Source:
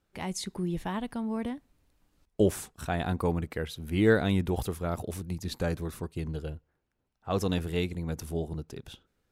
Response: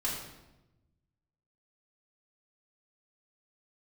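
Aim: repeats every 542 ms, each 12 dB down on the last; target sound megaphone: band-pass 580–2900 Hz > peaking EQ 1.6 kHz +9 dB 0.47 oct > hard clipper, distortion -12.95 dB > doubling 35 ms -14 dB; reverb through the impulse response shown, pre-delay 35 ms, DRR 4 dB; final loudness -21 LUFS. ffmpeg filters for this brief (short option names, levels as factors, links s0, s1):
-filter_complex "[0:a]aecho=1:1:542|1084|1626:0.251|0.0628|0.0157,asplit=2[s0][s1];[1:a]atrim=start_sample=2205,adelay=35[s2];[s1][s2]afir=irnorm=-1:irlink=0,volume=0.355[s3];[s0][s3]amix=inputs=2:normalize=0,highpass=580,lowpass=2900,equalizer=f=1600:t=o:w=0.47:g=9,asoftclip=type=hard:threshold=0.0944,asplit=2[s4][s5];[s5]adelay=35,volume=0.2[s6];[s4][s6]amix=inputs=2:normalize=0,volume=4.73"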